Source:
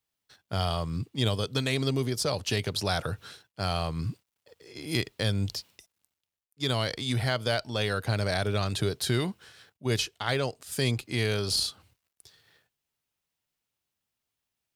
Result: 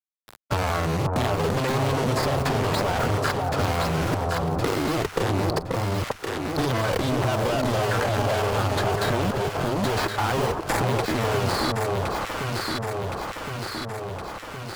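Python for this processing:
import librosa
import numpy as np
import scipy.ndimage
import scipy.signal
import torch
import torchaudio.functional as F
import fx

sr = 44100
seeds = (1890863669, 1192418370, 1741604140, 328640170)

p1 = scipy.signal.medfilt(x, 15)
p2 = fx.fuzz(p1, sr, gain_db=49.0, gate_db=-52.0)
p3 = fx.peak_eq(p2, sr, hz=890.0, db=7.5, octaves=2.8)
p4 = fx.quant_companded(p3, sr, bits=4)
p5 = fx.granulator(p4, sr, seeds[0], grain_ms=100.0, per_s=20.0, spray_ms=25.0, spread_st=0)
p6 = fx.level_steps(p5, sr, step_db=22)
p7 = p6 + fx.echo_alternate(p6, sr, ms=533, hz=1200.0, feedback_pct=63, wet_db=-2.0, dry=0)
p8 = fx.band_squash(p7, sr, depth_pct=70)
y = p8 * librosa.db_to_amplitude(-3.0)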